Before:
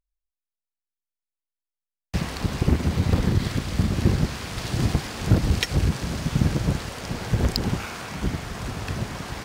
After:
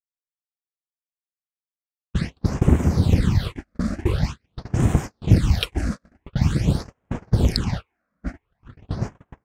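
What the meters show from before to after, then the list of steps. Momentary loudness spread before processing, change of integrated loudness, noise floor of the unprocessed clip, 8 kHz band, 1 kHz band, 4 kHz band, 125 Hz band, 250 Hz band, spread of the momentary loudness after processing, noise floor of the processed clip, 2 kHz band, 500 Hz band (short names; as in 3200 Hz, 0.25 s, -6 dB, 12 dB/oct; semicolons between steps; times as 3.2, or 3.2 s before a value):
9 LU, +2.5 dB, under -85 dBFS, -4.0 dB, -2.0 dB, -1.0 dB, +2.5 dB, +1.5 dB, 15 LU, under -85 dBFS, -3.5 dB, +0.5 dB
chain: phaser stages 8, 0.46 Hz, lowest notch 110–4500 Hz; gate -27 dBFS, range -41 dB; low-pass opened by the level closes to 2000 Hz, open at -17.5 dBFS; gain +3 dB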